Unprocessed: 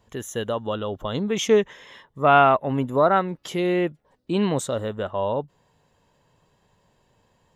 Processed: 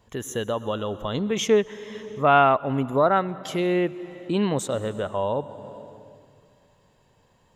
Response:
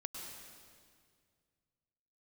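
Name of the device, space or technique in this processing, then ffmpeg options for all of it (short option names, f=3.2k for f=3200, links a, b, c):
ducked reverb: -filter_complex "[0:a]asplit=3[a][b][c];[1:a]atrim=start_sample=2205[d];[b][d]afir=irnorm=-1:irlink=0[e];[c]apad=whole_len=332962[f];[e][f]sidechaincompress=threshold=-31dB:ratio=8:attack=40:release=457,volume=-2dB[g];[a][g]amix=inputs=2:normalize=0,volume=-2dB"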